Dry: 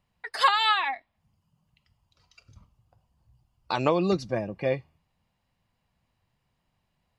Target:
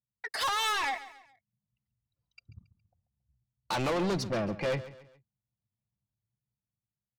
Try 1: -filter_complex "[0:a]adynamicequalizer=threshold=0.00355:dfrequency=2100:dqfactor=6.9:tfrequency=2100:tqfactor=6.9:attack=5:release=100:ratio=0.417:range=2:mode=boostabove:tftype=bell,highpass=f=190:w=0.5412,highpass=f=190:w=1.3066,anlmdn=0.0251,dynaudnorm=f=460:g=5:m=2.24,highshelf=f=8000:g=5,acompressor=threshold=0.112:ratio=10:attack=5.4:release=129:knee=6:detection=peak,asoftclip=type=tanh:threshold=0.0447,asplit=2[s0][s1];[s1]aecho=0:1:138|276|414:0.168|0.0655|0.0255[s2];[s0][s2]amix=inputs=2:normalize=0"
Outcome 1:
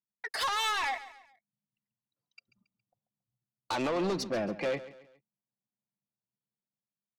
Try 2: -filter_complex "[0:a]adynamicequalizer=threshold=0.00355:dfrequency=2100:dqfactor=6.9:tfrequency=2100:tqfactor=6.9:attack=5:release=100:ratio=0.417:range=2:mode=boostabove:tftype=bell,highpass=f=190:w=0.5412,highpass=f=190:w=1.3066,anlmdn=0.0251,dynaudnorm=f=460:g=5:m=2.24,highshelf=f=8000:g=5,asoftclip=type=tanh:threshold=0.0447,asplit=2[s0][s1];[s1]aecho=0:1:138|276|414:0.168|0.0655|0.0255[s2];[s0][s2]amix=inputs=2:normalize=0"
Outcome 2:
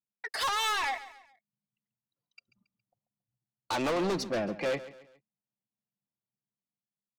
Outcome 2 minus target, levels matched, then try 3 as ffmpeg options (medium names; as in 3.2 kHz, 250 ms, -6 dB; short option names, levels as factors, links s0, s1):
125 Hz band -6.5 dB
-filter_complex "[0:a]adynamicequalizer=threshold=0.00355:dfrequency=2100:dqfactor=6.9:tfrequency=2100:tqfactor=6.9:attack=5:release=100:ratio=0.417:range=2:mode=boostabove:tftype=bell,highpass=f=83:w=0.5412,highpass=f=83:w=1.3066,anlmdn=0.0251,dynaudnorm=f=460:g=5:m=2.24,highshelf=f=8000:g=5,asoftclip=type=tanh:threshold=0.0447,asplit=2[s0][s1];[s1]aecho=0:1:138|276|414:0.168|0.0655|0.0255[s2];[s0][s2]amix=inputs=2:normalize=0"